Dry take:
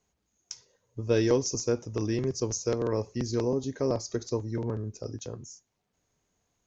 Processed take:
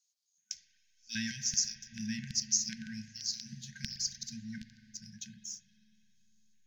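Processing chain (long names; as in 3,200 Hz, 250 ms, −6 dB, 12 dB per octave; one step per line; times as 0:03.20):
mains-hum notches 60/120/180/240/300/360/420 Hz
auto-filter high-pass square 1.3 Hz 300–4,700 Hz
in parallel at −6 dB: slack as between gear wheels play −41.5 dBFS
on the sum: spring reverb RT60 3.4 s, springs 37/56 ms, chirp 70 ms, DRR 9.5 dB
brick-wall band-stop 230–1,500 Hz
level −3.5 dB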